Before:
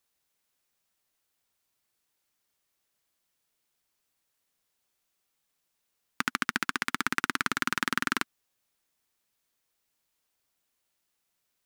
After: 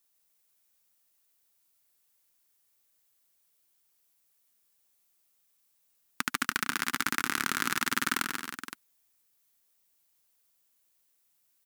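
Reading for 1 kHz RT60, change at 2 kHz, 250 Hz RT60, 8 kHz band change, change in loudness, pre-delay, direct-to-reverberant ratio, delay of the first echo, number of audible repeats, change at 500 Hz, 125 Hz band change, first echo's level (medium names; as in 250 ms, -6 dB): no reverb, -1.0 dB, no reverb, +4.5 dB, -0.5 dB, no reverb, no reverb, 140 ms, 4, -1.5 dB, -1.5 dB, -5.5 dB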